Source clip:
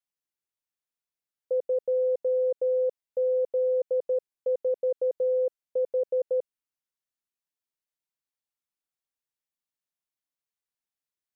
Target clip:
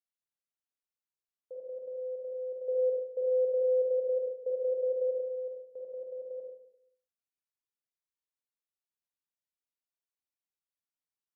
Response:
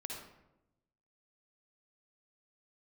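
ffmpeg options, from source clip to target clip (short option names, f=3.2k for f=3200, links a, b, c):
-filter_complex "[0:a]alimiter=level_in=2dB:limit=-24dB:level=0:latency=1:release=315,volume=-2dB,asettb=1/sr,asplit=3[a][b][c];[a]atrim=end=2.684[d];[b]atrim=start=2.68:end=5.19,asetpts=PTS-STARTPTS,afade=t=in:d=0.004:c=qsin,afade=t=out:st=2.506:d=0.004:c=qsin,equalizer=f=470:w=2.1:g=12[e];[c]atrim=start=5.186[f];[d][e]acrossfade=d=0.004:c1=hsin:c2=qsin[g];[g][f]acrossfade=d=0.004:c1=qsin:c2=hsin[h];[1:a]atrim=start_sample=2205,asetrate=66150,aresample=44100[i];[h][i]afir=irnorm=-1:irlink=0,volume=-3.5dB"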